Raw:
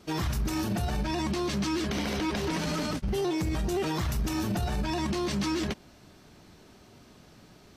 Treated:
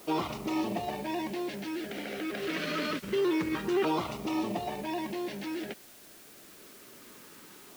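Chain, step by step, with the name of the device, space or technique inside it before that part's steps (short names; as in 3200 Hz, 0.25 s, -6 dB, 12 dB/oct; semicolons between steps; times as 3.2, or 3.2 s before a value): shortwave radio (BPF 340–2600 Hz; tremolo 0.27 Hz, depth 61%; LFO notch saw down 0.26 Hz 630–1800 Hz; white noise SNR 20 dB); 2.42–3.15 bell 3400 Hz +5 dB 1.8 oct; gain +6 dB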